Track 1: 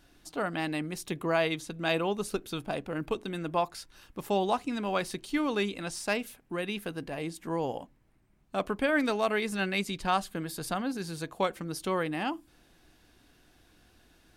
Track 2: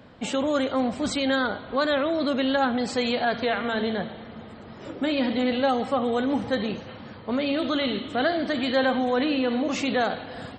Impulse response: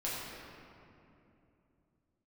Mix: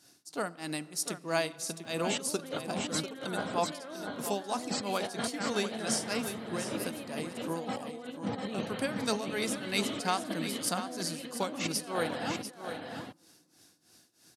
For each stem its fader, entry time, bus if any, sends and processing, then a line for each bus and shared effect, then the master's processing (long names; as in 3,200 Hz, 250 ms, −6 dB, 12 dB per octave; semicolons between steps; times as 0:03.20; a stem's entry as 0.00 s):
−1.5 dB, 0.00 s, send −21.5 dB, echo send −9.5 dB, flat-topped bell 7,200 Hz +13.5 dB; shaped tremolo triangle 3.1 Hz, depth 100%
−6.5 dB, 1.85 s, no send, echo send −5 dB, compressor whose output falls as the input rises −31 dBFS, ratio −0.5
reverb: on, RT60 2.8 s, pre-delay 5 ms
echo: single-tap delay 694 ms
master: high-pass filter 110 Hz 24 dB per octave